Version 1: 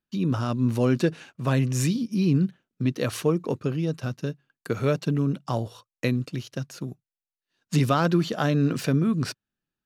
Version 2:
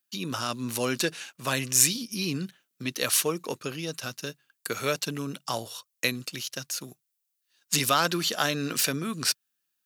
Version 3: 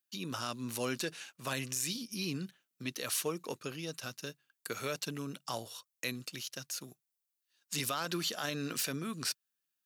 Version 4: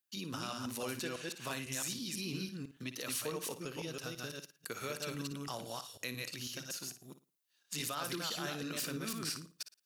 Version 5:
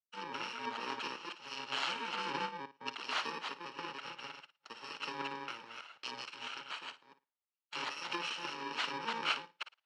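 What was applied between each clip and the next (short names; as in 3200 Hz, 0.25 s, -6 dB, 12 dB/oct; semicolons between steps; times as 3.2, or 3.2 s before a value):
tilt +4.5 dB/oct
limiter -16 dBFS, peak gain reduction 11 dB; gain -7 dB
reverse delay 0.166 s, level -2 dB; on a send: flutter echo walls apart 9.7 m, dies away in 0.28 s; on the sum: compressor 1.5:1, threshold -41 dBFS, peak gain reduction 4.5 dB; gain -1 dB
FFT order left unsorted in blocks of 64 samples; speaker cabinet 390–4500 Hz, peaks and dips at 620 Hz +3 dB, 890 Hz +10 dB, 1300 Hz +7 dB, 1900 Hz +5 dB, 2900 Hz +5 dB; three-band expander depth 100%; gain +3 dB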